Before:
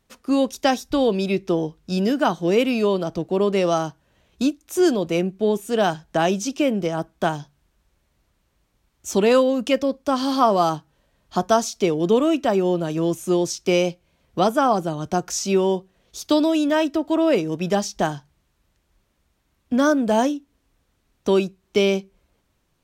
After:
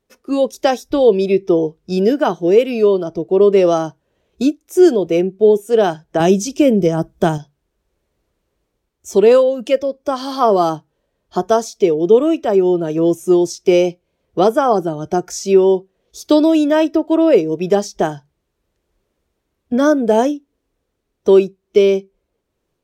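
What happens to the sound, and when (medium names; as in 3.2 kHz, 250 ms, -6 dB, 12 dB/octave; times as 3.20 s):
6.20–7.38 s: tone controls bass +10 dB, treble +6 dB
whole clip: spectral noise reduction 8 dB; peaking EQ 430 Hz +11 dB 1 oct; level rider gain up to 4 dB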